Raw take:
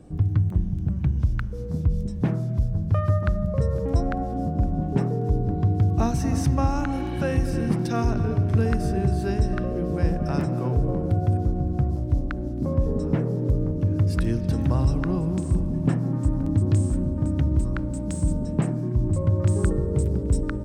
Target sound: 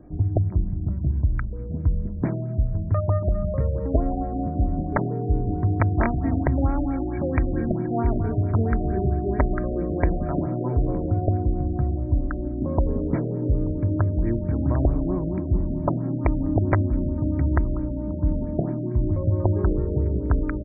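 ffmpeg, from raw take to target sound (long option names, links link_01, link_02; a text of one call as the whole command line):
ffmpeg -i in.wav -af "aeval=exprs='(mod(3.55*val(0)+1,2)-1)/3.55':channel_layout=same,aecho=1:1:3.1:0.37,afftfilt=real='re*lt(b*sr/1024,720*pow(2500/720,0.5+0.5*sin(2*PI*4.5*pts/sr)))':imag='im*lt(b*sr/1024,720*pow(2500/720,0.5+0.5*sin(2*PI*4.5*pts/sr)))':win_size=1024:overlap=0.75" out.wav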